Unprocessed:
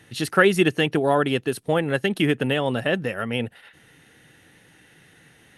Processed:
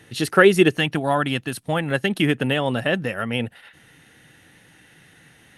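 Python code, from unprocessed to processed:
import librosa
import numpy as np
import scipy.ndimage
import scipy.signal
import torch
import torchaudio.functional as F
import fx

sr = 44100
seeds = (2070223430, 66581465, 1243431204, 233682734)

y = fx.peak_eq(x, sr, hz=420.0, db=fx.steps((0.0, 3.0), (0.77, -12.0), (1.91, -3.5)), octaves=0.61)
y = F.gain(torch.from_numpy(y), 2.0).numpy()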